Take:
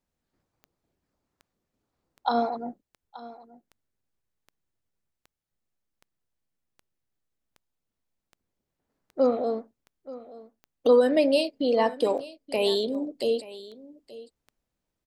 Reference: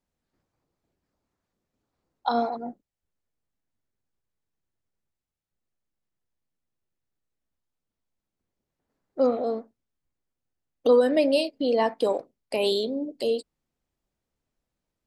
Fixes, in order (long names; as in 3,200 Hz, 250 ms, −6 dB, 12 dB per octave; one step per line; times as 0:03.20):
click removal
echo removal 878 ms −18 dB